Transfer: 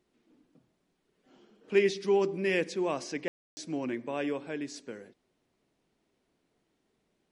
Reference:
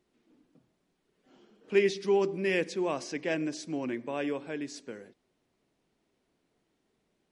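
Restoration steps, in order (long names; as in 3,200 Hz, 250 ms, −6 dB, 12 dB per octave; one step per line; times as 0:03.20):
ambience match 0:03.28–0:03.57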